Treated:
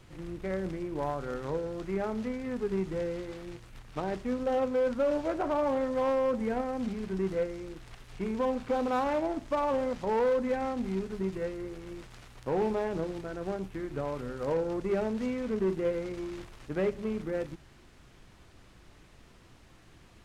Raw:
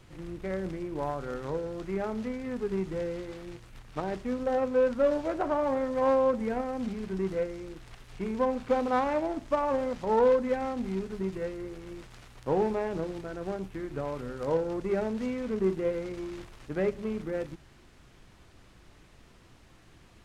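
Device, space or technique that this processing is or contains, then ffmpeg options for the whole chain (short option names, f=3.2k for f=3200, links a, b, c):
limiter into clipper: -af "alimiter=limit=-19.5dB:level=0:latency=1:release=18,asoftclip=type=hard:threshold=-22.5dB"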